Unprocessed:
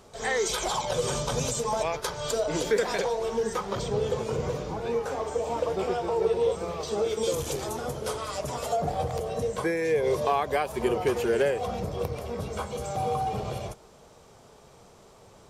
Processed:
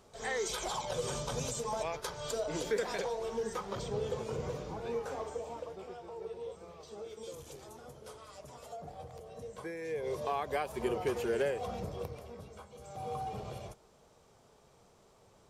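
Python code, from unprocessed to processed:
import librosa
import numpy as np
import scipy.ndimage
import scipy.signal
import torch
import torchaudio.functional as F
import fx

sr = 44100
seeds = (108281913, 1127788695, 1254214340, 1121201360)

y = fx.gain(x, sr, db=fx.line((5.21, -8.0), (5.82, -18.0), (9.24, -18.0), (10.56, -7.5), (11.87, -7.5), (12.7, -19.5), (13.15, -10.0)))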